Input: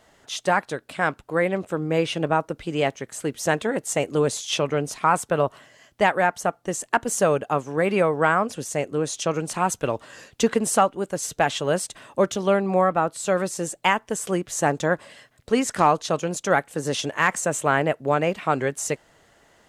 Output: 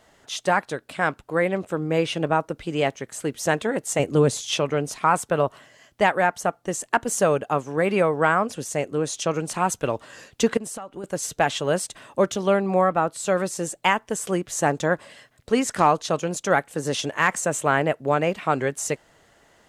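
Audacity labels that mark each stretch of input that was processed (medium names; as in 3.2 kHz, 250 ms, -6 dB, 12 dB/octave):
3.990000	4.510000	bass shelf 260 Hz +8.5 dB
10.570000	11.040000	compression 20:1, threshold -30 dBFS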